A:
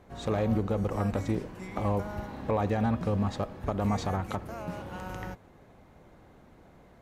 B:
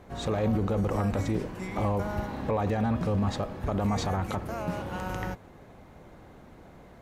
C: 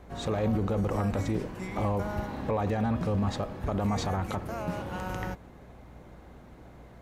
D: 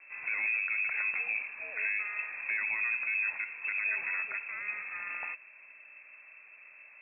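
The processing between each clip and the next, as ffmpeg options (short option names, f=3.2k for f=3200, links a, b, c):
-af "alimiter=limit=-24dB:level=0:latency=1:release=14,volume=5dB"
-af "aeval=exprs='val(0)+0.00282*(sin(2*PI*60*n/s)+sin(2*PI*2*60*n/s)/2+sin(2*PI*3*60*n/s)/3+sin(2*PI*4*60*n/s)/4+sin(2*PI*5*60*n/s)/5)':c=same,volume=-1dB"
-af "lowpass=f=2.3k:t=q:w=0.5098,lowpass=f=2.3k:t=q:w=0.6013,lowpass=f=2.3k:t=q:w=0.9,lowpass=f=2.3k:t=q:w=2.563,afreqshift=-2700,volume=-4.5dB"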